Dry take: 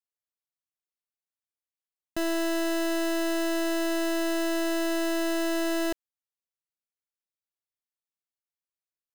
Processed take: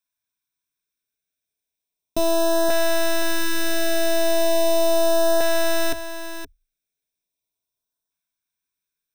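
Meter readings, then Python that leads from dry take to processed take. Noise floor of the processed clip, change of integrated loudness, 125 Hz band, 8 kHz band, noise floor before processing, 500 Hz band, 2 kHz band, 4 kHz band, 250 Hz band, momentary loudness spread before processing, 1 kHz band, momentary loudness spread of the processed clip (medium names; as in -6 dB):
under -85 dBFS, +6.5 dB, no reading, +9.0 dB, under -85 dBFS, +9.5 dB, +6.0 dB, +7.5 dB, -0.5 dB, 2 LU, +9.5 dB, 12 LU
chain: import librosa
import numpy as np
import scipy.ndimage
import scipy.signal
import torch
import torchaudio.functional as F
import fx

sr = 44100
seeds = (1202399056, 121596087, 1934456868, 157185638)

y = fx.ripple_eq(x, sr, per_octave=1.6, db=11)
y = fx.filter_lfo_notch(y, sr, shape='saw_up', hz=0.37, low_hz=430.0, high_hz=2400.0, q=1.0)
y = y + 10.0 ** (-10.5 / 20.0) * np.pad(y, (int(521 * sr / 1000.0), 0))[:len(y)]
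y = y * librosa.db_to_amplitude(7.5)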